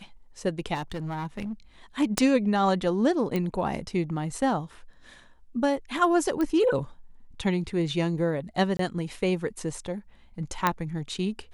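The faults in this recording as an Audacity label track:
0.740000	1.530000	clipped -28.5 dBFS
2.180000	2.180000	pop -7 dBFS
3.360000	3.360000	pop -15 dBFS
6.410000	6.410000	pop -17 dBFS
8.770000	8.790000	dropout 23 ms
10.670000	10.670000	pop -8 dBFS

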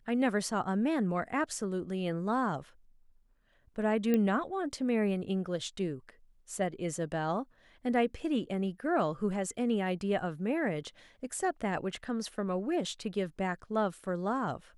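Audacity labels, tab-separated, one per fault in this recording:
4.140000	4.140000	pop -17 dBFS

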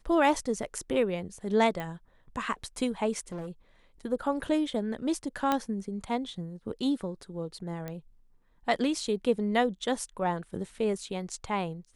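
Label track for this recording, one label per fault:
1.800000	1.800000	pop -22 dBFS
3.320000	3.500000	clipped -34 dBFS
5.520000	5.520000	pop -13 dBFS
7.880000	7.880000	pop -23 dBFS

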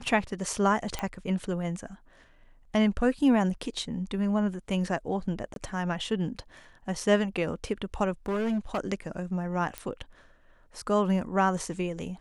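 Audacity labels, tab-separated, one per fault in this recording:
0.990000	0.990000	pop -16 dBFS
5.540000	5.560000	dropout 22 ms
8.260000	8.790000	clipped -25 dBFS
9.780000	9.780000	pop -17 dBFS

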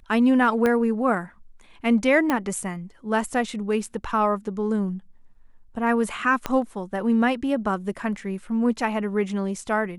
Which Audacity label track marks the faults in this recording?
0.660000	0.660000	pop -11 dBFS
2.300000	2.300000	pop -10 dBFS
6.460000	6.460000	pop -10 dBFS

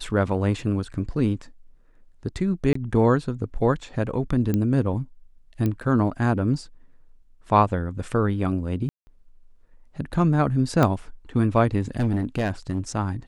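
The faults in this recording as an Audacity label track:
2.730000	2.750000	dropout 24 ms
4.540000	4.540000	pop -12 dBFS
5.660000	5.660000	pop -14 dBFS
8.890000	9.070000	dropout 180 ms
10.830000	10.830000	pop -8 dBFS
11.970000	12.790000	clipped -18.5 dBFS

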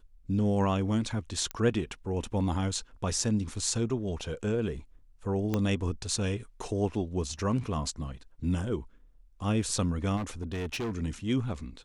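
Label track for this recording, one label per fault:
1.510000	1.510000	pop -18 dBFS
5.540000	5.540000	pop -15 dBFS
10.160000	10.920000	clipped -30 dBFS

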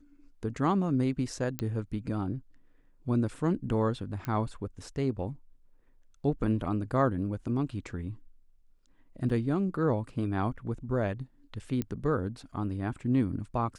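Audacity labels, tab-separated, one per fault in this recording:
1.590000	1.590000	pop -17 dBFS
4.250000	4.250000	pop -21 dBFS
9.290000	9.300000	dropout 5.8 ms
11.820000	11.820000	pop -19 dBFS

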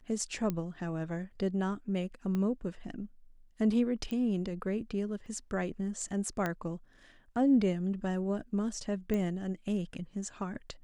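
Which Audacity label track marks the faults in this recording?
0.500000	0.500000	pop -20 dBFS
2.350000	2.350000	pop -23 dBFS
4.110000	4.110000	pop -25 dBFS
5.260000	5.260000	dropout 2.1 ms
6.460000	6.460000	pop -19 dBFS
9.140000	9.140000	pop -21 dBFS

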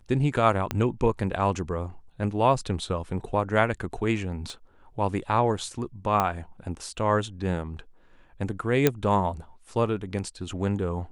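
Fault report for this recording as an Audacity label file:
0.710000	0.710000	pop -12 dBFS
4.500000	4.500000	pop -27 dBFS
6.200000	6.200000	pop -10 dBFS
8.870000	8.870000	pop -5 dBFS

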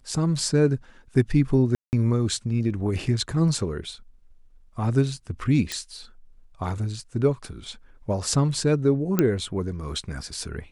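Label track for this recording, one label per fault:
1.750000	1.930000	dropout 179 ms
5.720000	5.720000	pop -14 dBFS
9.190000	9.190000	pop -7 dBFS

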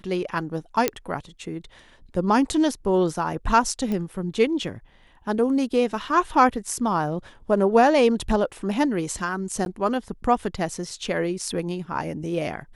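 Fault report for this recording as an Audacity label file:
0.880000	0.880000	pop -4 dBFS
3.920000	3.920000	pop -17 dBFS
6.670000	6.670000	dropout 2.2 ms
9.650000	9.660000	dropout

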